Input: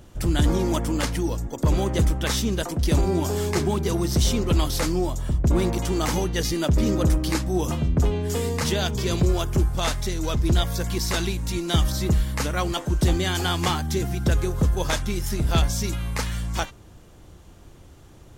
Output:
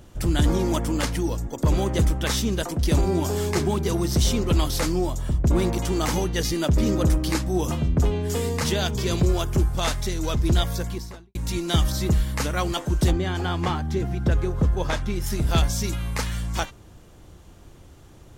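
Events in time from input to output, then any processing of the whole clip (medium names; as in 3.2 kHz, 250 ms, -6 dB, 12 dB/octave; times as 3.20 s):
10.65–11.35 s: studio fade out
13.10–15.20 s: low-pass 1.2 kHz -> 2.8 kHz 6 dB/octave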